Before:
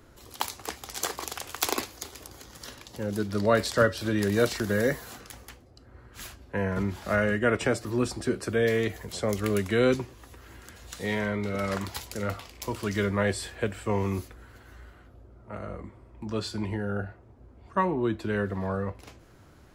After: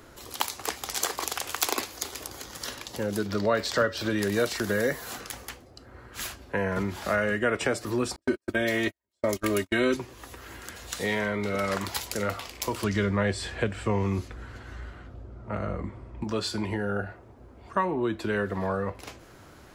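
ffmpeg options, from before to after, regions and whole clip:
-filter_complex "[0:a]asettb=1/sr,asplit=3[s0][s1][s2];[s0]atrim=end=3.264[s3];[s1]atrim=start=3.26:end=4.1,asetpts=PTS-STARTPTS,afade=t=in:d=0.004:c=qsin,afade=t=out:st=0.836:d=0.004:c=qsin,equalizer=f=10000:w=1.7:g=-12,acompressor=mode=upward:threshold=0.0398:ratio=2.5:attack=3.2:release=140:knee=2.83:detection=peak[s4];[s2]atrim=start=4.096[s5];[s3][s4]acrossfade=d=0.004:c1=hsin:c2=qsin[s6];[s6][s5]acrossfade=d=0.004:c1=qsin:c2=hsin,asettb=1/sr,asplit=3[s7][s8][s9];[s7]atrim=end=8.164[s10];[s8]atrim=start=8.16:end=9.97,asetpts=PTS-STARTPTS,afade=t=in:d=0.004:c=qsin,afade=t=out:st=1.806:d=0.004:c=qsin,agate=range=0.002:threshold=0.0316:ratio=16:release=100:detection=peak,aecho=1:1:3.2:0.88,atrim=end_sample=79821[s11];[s9]atrim=start=9.966[s12];[s10][s11]acrossfade=d=0.004:c1=hsin:c2=qsin[s13];[s13][s12]acrossfade=d=0.004:c1=qsin:c2=hsin,asettb=1/sr,asplit=3[s14][s15][s16];[s14]atrim=end=12.844[s17];[s15]atrim=start=12.84:end=16.24,asetpts=PTS-STARTPTS,afade=t=in:d=0.004:c=qsin,afade=t=out:st=3.396:d=0.004:c=qsin,lowpass=7400,bass=f=250:g=8,treble=f=4000:g=-1[s18];[s16]atrim=start=16.236[s19];[s17][s18]acrossfade=d=0.004:c1=hsin:c2=qsin[s20];[s20][s19]acrossfade=d=0.004:c1=qsin:c2=hsin,lowshelf=f=240:g=-7.5,acompressor=threshold=0.0178:ratio=2,volume=2.37"

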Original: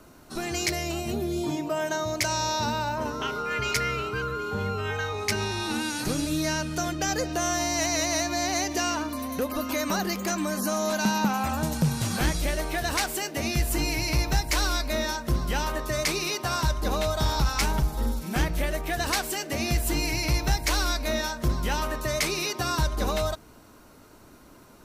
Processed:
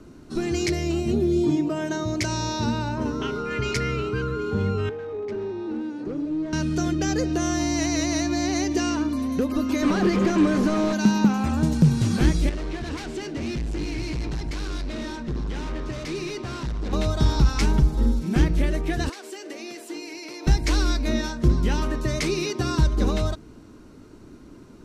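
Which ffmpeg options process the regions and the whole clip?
-filter_complex "[0:a]asettb=1/sr,asplit=3[s0][s1][s2];[s0]atrim=end=4.894[s3];[s1]atrim=start=4.89:end=6.53,asetpts=PTS-STARTPTS,afade=t=in:d=0.004:c=qsin,afade=t=out:st=1.636:d=0.004:c=qsin,bandpass=f=490:t=q:w=1.5,asoftclip=type=hard:threshold=0.0266[s4];[s2]atrim=start=6.526[s5];[s3][s4]acrossfade=d=0.004:c1=hsin:c2=qsin[s6];[s6][s5]acrossfade=d=0.004:c1=qsin:c2=hsin,asettb=1/sr,asplit=3[s7][s8][s9];[s7]atrim=end=9.824[s10];[s8]atrim=start=9.82:end=10.93,asetpts=PTS-STARTPTS,afade=t=in:d=0.004:c=qsin,afade=t=out:st=1.106:d=0.004:c=qsin,bandreject=f=830:w=22,asplit=2[s11][s12];[s12]highpass=f=720:p=1,volume=44.7,asoftclip=type=tanh:threshold=0.15[s13];[s11][s13]amix=inputs=2:normalize=0,lowpass=f=1300:p=1,volume=0.501[s14];[s9]atrim=start=10.926[s15];[s10][s14]acrossfade=d=0.004:c1=hsin:c2=qsin[s16];[s16][s15]acrossfade=d=0.004:c1=qsin:c2=hsin,asettb=1/sr,asplit=3[s17][s18][s19];[s17]atrim=end=12.494[s20];[s18]atrim=start=12.49:end=16.93,asetpts=PTS-STARTPTS,afade=t=in:d=0.004:c=qsin,afade=t=out:st=4.436:d=0.004:c=qsin,lowpass=5400,asoftclip=type=hard:threshold=0.0251,aecho=1:1:282:0.133,atrim=end_sample=195804[s21];[s19]atrim=start=16.926[s22];[s20][s21]acrossfade=d=0.004:c1=hsin:c2=qsin[s23];[s23][s22]acrossfade=d=0.004:c1=qsin:c2=hsin,asettb=1/sr,asplit=3[s24][s25][s26];[s24]atrim=end=19.094[s27];[s25]atrim=start=19.09:end=20.47,asetpts=PTS-STARTPTS,afade=t=in:d=0.004:c=qsin,afade=t=out:st=1.376:d=0.004:c=qsin,highpass=f=350:w=0.5412,highpass=f=350:w=1.3066,acompressor=threshold=0.0224:ratio=16:attack=3.2:release=140:knee=1:detection=peak[s28];[s26]atrim=start=20.466[s29];[s27][s28]acrossfade=d=0.004:c1=hsin:c2=qsin[s30];[s30][s29]acrossfade=d=0.004:c1=qsin:c2=hsin,lowpass=7600,lowshelf=f=480:t=q:w=1.5:g=8,volume=0.841"

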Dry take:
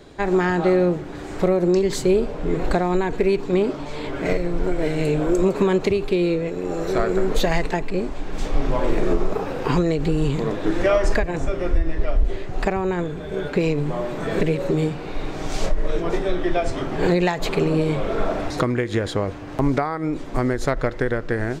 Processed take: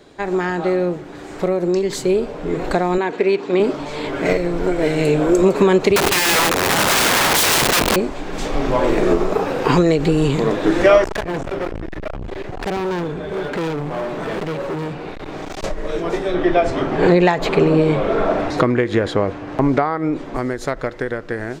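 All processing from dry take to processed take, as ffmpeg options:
-filter_complex "[0:a]asettb=1/sr,asplit=3[s0][s1][s2];[s0]atrim=end=2.984[s3];[s1]atrim=start=2.98:end=3.6,asetpts=PTS-STARTPTS,afade=t=in:d=0.004:c=qsin,afade=t=out:st=0.616:d=0.004:c=qsin,highpass=230,lowpass=3400,aemphasis=mode=production:type=50fm[s4];[s2]atrim=start=3.596[s5];[s3][s4]acrossfade=d=0.004:c1=hsin:c2=qsin[s6];[s6][s5]acrossfade=d=0.004:c1=qsin:c2=hsin,asettb=1/sr,asplit=3[s7][s8][s9];[s7]atrim=end=5.964[s10];[s8]atrim=start=5.96:end=7.96,asetpts=PTS-STARTPTS,afade=t=in:d=0.004:c=qsin,afade=t=out:st=1.996:d=0.004:c=qsin,acontrast=43,aeval=exprs='(mod(7.08*val(0)+1,2)-1)/7.08':c=same[s11];[s9]atrim=start=7.956[s12];[s10][s11]acrossfade=d=0.004:c1=hsin:c2=qsin[s13];[s13][s12]acrossfade=d=0.004:c1=qsin:c2=hsin,asettb=1/sr,asplit=3[s14][s15][s16];[s14]atrim=end=11.044[s17];[s15]atrim=start=11.04:end=15.64,asetpts=PTS-STARTPTS,afade=t=in:d=0.004:c=qsin,afade=t=out:st=4.596:d=0.004:c=qsin,highshelf=f=4800:g=-10,volume=18.8,asoftclip=hard,volume=0.0531[s18];[s16]atrim=start=15.636[s19];[s17][s18]acrossfade=d=0.004:c1=hsin:c2=qsin[s20];[s20][s19]acrossfade=d=0.004:c1=qsin:c2=hsin,asettb=1/sr,asplit=3[s21][s22][s23];[s21]atrim=end=16.344[s24];[s22]atrim=start=16.34:end=20.37,asetpts=PTS-STARTPTS,afade=t=in:d=0.004:c=qsin,afade=t=out:st=4.026:d=0.004:c=qsin,lowpass=f=2600:p=1,acontrast=31[s25];[s23]atrim=start=20.366[s26];[s24][s25]acrossfade=d=0.004:c1=hsin:c2=qsin[s27];[s27][s26]acrossfade=d=0.004:c1=qsin:c2=hsin,lowshelf=f=110:g=-11,dynaudnorm=f=520:g=11:m=3.76"

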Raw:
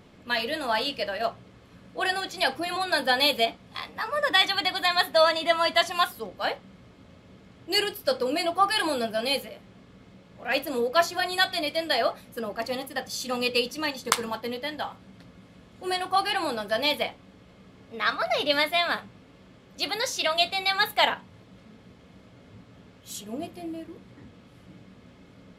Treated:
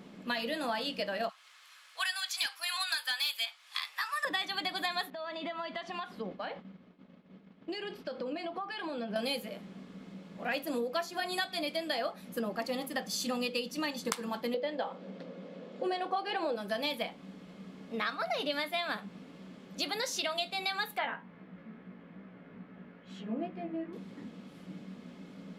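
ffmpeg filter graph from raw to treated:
-filter_complex "[0:a]asettb=1/sr,asplit=3[s0][s1][s2];[s0]atrim=end=1.294[s3];[s1]atrim=start=1.29:end=4.25,asetpts=PTS-STARTPTS,afade=t=in:d=0.004:c=qsin,afade=t=out:st=2.956:d=0.004:c=qsin,highpass=f=1100:w=0.5412,highpass=f=1100:w=1.3066,highshelf=f=2700:g=8.5,asoftclip=type=hard:threshold=0.237[s4];[s2]atrim=start=4.246[s5];[s3][s4]acrossfade=d=0.004:c1=hsin:c2=qsin[s6];[s6][s5]acrossfade=d=0.004:c1=qsin:c2=hsin,asettb=1/sr,asplit=3[s7][s8][s9];[s7]atrim=end=5.104[s10];[s8]atrim=start=5.1:end=9.16,asetpts=PTS-STARTPTS,afade=t=in:d=0.004:c=qsin,afade=t=out:st=4.056:d=0.004:c=qsin,agate=range=0.0224:threshold=0.00562:ratio=3:release=100:detection=peak,acompressor=threshold=0.0178:ratio=8:attack=3.2:release=140:knee=1:detection=peak,lowpass=3400[s11];[s9]atrim=start=9.156[s12];[s10][s11]acrossfade=d=0.004:c1=hsin:c2=qsin[s13];[s13][s12]acrossfade=d=0.004:c1=qsin:c2=hsin,asettb=1/sr,asplit=3[s14][s15][s16];[s14]atrim=end=14.544[s17];[s15]atrim=start=14.54:end=16.56,asetpts=PTS-STARTPTS,afade=t=in:d=0.004:c=qsin,afade=t=out:st=2.016:d=0.004:c=qsin,highpass=180,lowpass=4900,equalizer=f=520:t=o:w=0.64:g=14[s18];[s16]atrim=start=16.556[s19];[s17][s18]acrossfade=d=0.004:c1=hsin:c2=qsin[s20];[s20][s19]acrossfade=d=0.004:c1=qsin:c2=hsin,asettb=1/sr,asplit=3[s21][s22][s23];[s21]atrim=end=20.984[s24];[s22]atrim=start=20.98:end=23.93,asetpts=PTS-STARTPTS,afade=t=in:d=0.004:c=qsin,afade=t=out:st=2.946:d=0.004:c=qsin,flanger=delay=15.5:depth=2.8:speed=2.3,lowpass=f=1900:t=q:w=1.6[s25];[s23]atrim=start=23.926[s26];[s24][s25]acrossfade=d=0.004:c1=hsin:c2=qsin[s27];[s27][s26]acrossfade=d=0.004:c1=qsin:c2=hsin,lowshelf=f=140:t=q:w=3:g=-10,acompressor=threshold=0.0282:ratio=6"

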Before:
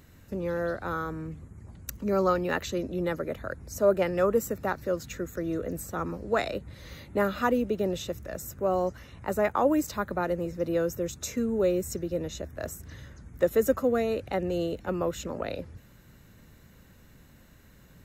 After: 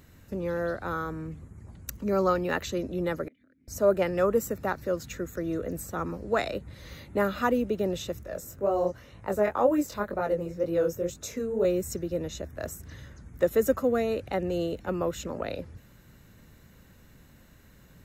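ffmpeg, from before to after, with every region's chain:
-filter_complex "[0:a]asettb=1/sr,asplit=3[s0][s1][s2];[s0]atrim=end=3.284[s3];[s1]atrim=start=3.28:end=3.68,asetpts=PTS-STARTPTS,afade=t=in:d=0.004:c=qsin,afade=t=out:st=0.396:d=0.004:c=qsin,agate=range=0.0224:threshold=0.00708:ratio=3:release=100:detection=peak,asplit=3[s4][s5][s6];[s4]bandpass=f=270:t=q:w=8,volume=1[s7];[s5]bandpass=f=2290:t=q:w=8,volume=0.501[s8];[s6]bandpass=f=3010:t=q:w=8,volume=0.355[s9];[s7][s8][s9]amix=inputs=3:normalize=0,acompressor=threshold=0.00112:ratio=10:attack=3.2:release=140:knee=1:detection=peak[s10];[s2]atrim=start=3.676[s11];[s3][s10]acrossfade=d=0.004:c1=hsin:c2=qsin[s12];[s12][s11]acrossfade=d=0.004:c1=qsin:c2=hsin,asettb=1/sr,asplit=3[s13][s14][s15];[s13]atrim=end=8.234[s16];[s14]atrim=start=8.23:end=11.65,asetpts=PTS-STARTPTS,afade=t=in:d=0.004:c=qsin,afade=t=out:st=3.416:d=0.004:c=qsin,equalizer=f=520:w=1.5:g=5,flanger=delay=18.5:depth=6.3:speed=2[s17];[s15]atrim=start=11.646[s18];[s16][s17]acrossfade=d=0.004:c1=hsin:c2=qsin[s19];[s19][s18]acrossfade=d=0.004:c1=qsin:c2=hsin"

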